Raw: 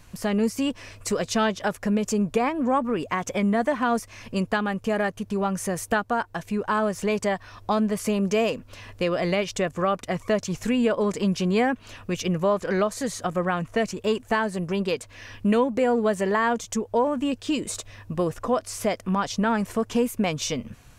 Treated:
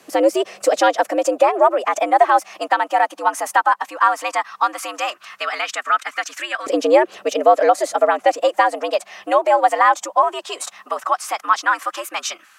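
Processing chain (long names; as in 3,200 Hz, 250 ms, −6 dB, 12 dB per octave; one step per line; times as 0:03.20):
phase-vocoder stretch with locked phases 0.6×
frequency shifter +100 Hz
auto-filter high-pass saw up 0.15 Hz 470–1,600 Hz
level +6 dB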